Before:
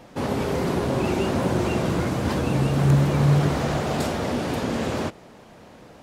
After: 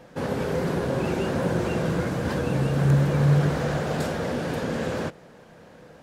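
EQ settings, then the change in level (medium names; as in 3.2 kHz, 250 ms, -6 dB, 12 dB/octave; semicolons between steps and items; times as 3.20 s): graphic EQ with 31 bands 160 Hz +7 dB, 500 Hz +7 dB, 1.6 kHz +7 dB; -4.5 dB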